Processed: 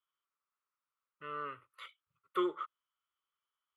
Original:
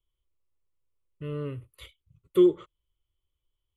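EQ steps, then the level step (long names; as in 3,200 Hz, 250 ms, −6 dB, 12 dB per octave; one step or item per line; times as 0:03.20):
resonant band-pass 1,300 Hz, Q 4.5
spectral tilt +2 dB per octave
+12.0 dB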